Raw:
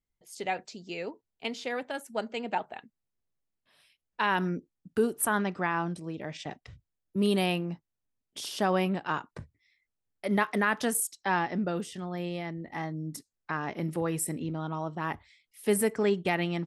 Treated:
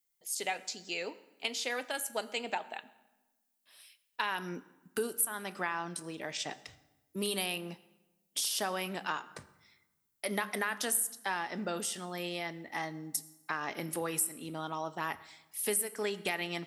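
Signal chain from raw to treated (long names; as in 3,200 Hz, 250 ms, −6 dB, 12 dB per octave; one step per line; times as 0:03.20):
RIAA equalisation recording
downward compressor 5 to 1, threshold −30 dBFS, peak gain reduction 17.5 dB
convolution reverb RT60 1.1 s, pre-delay 6 ms, DRR 13 dB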